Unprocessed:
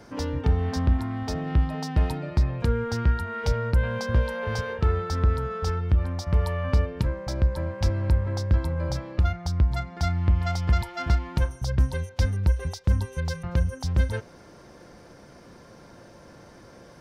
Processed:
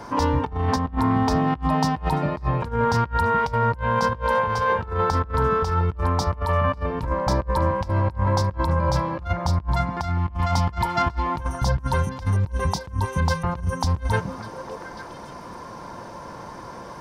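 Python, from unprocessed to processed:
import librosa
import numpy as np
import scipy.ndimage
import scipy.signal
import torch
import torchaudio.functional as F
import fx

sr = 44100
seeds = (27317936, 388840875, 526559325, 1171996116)

y = fx.peak_eq(x, sr, hz=980.0, db=14.5, octaves=0.51)
y = fx.echo_stepped(y, sr, ms=286, hz=200.0, octaves=1.4, feedback_pct=70, wet_db=-6.5)
y = fx.over_compress(y, sr, threshold_db=-26.0, ratio=-0.5)
y = y * librosa.db_to_amplitude(4.0)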